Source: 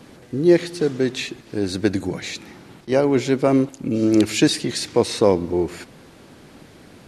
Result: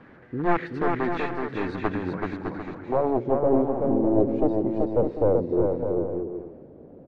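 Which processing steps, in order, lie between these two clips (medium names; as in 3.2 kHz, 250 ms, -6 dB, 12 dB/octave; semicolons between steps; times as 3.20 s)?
one-sided wavefolder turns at -17 dBFS; low-pass sweep 1.7 kHz -> 530 Hz, 1.76–3.52 s; bouncing-ball echo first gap 380 ms, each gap 0.6×, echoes 5; trim -6 dB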